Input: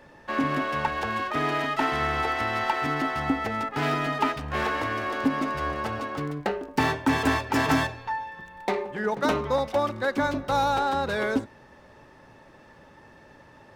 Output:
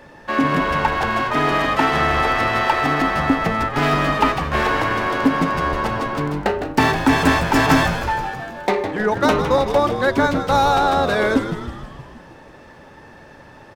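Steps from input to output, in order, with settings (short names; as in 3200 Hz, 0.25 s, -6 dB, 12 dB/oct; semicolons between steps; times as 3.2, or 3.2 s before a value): frequency-shifting echo 0.158 s, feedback 61%, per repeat -100 Hz, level -9 dB; gain +7.5 dB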